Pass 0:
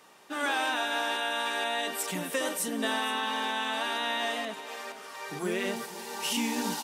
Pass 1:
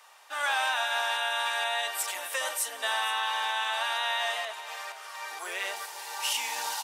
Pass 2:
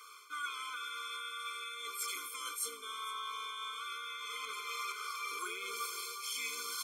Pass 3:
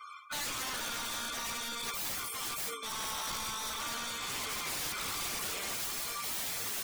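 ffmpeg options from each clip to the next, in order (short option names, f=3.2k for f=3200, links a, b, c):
-af "highpass=f=670:w=0.5412,highpass=f=670:w=1.3066,volume=2dB"
-af "areverse,acompressor=threshold=-37dB:ratio=16,areverse,afftfilt=real='re*eq(mod(floor(b*sr/1024/510),2),0)':imag='im*eq(mod(floor(b*sr/1024/510),2),0)':win_size=1024:overlap=0.75,volume=5.5dB"
-af "aeval=exprs='(mod(84.1*val(0)+1,2)-1)/84.1':c=same,afftdn=nr=28:nf=-53,volume=8.5dB"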